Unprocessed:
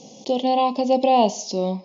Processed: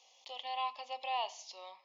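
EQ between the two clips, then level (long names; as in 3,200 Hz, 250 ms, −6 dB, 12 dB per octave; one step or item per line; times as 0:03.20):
four-pole ladder high-pass 1,100 Hz, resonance 35%
parametric band 6,000 Hz −12.5 dB 1.1 octaves
0.0 dB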